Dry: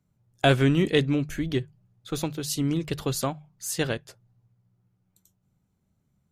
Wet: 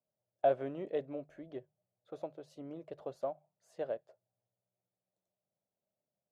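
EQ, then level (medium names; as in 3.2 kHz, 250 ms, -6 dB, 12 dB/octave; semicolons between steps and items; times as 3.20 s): band-pass filter 610 Hz, Q 6; 0.0 dB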